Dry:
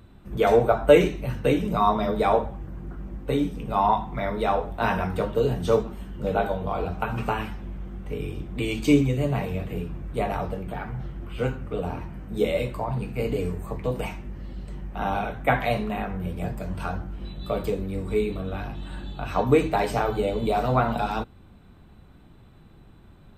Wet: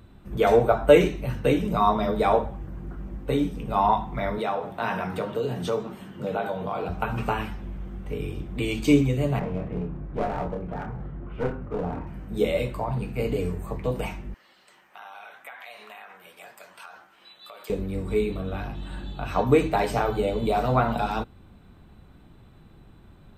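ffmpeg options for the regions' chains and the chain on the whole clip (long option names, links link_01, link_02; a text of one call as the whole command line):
ffmpeg -i in.wav -filter_complex "[0:a]asettb=1/sr,asplit=3[link_01][link_02][link_03];[link_01]atrim=end=4.384[link_04];[link_02]atrim=start=4.38:end=6.89,asetpts=PTS-STARTPTS,afade=type=in:duration=0.004:curve=qsin,afade=type=out:start_time=2.506:duration=0.004:curve=qsin,highpass=frequency=110:width=0.5412,highpass=frequency=110:width=1.3066,equalizer=frequency=1800:width=0.33:gain=3,acompressor=threshold=-27dB:ratio=2:attack=3.2:release=140:knee=1:detection=peak[link_05];[link_03]atrim=start=6.886[link_06];[link_04][link_05]acrossfade=duration=0.004:curve1=hsin:curve2=qsin[link_07];[link_07][link_06]acrossfade=duration=0.004:curve1=qsin:curve2=hsin,asettb=1/sr,asplit=3[link_08][link_09][link_10];[link_08]atrim=end=9.394[link_11];[link_09]atrim=start=9.39:end=12.07,asetpts=PTS-STARTPTS,afade=type=in:duration=0.004:curve=qsin,afade=type=out:start_time=2.676:duration=0.004:curve=qsin,lowpass=1500,aeval=exprs='clip(val(0),-1,0.0355)':channel_layout=same,asplit=2[link_12][link_13];[link_13]adelay=28,volume=-6dB[link_14];[link_12][link_14]amix=inputs=2:normalize=0,atrim=end_sample=118188[link_15];[link_10]atrim=start=12.066[link_16];[link_11][link_15]acrossfade=duration=0.004:curve1=hsin:curve2=qsin[link_17];[link_17][link_16]acrossfade=duration=0.004:curve1=qsin:curve2=hsin,asettb=1/sr,asplit=3[link_18][link_19][link_20];[link_18]atrim=end=14.344[link_21];[link_19]atrim=start=14.34:end=17.7,asetpts=PTS-STARTPTS,afade=type=in:duration=0.004:curve=qsin,afade=type=out:start_time=3.356:duration=0.004:curve=qsin,highpass=1100,acompressor=threshold=-40dB:ratio=5:attack=3.2:release=140:knee=1:detection=peak[link_22];[link_20]atrim=start=17.696[link_23];[link_21][link_22]acrossfade=duration=0.004:curve1=hsin:curve2=qsin[link_24];[link_24][link_23]acrossfade=duration=0.004:curve1=qsin:curve2=hsin" out.wav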